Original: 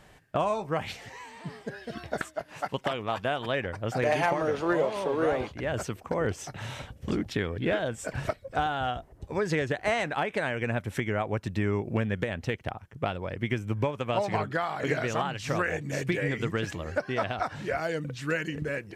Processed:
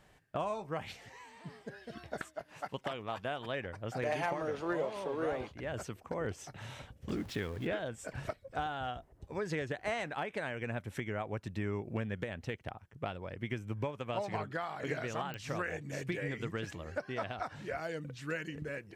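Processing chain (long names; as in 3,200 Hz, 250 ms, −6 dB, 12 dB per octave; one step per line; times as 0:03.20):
0:07.09–0:07.67: converter with a step at zero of −38.5 dBFS
digital clicks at 0:15.34, −18 dBFS
level −8.5 dB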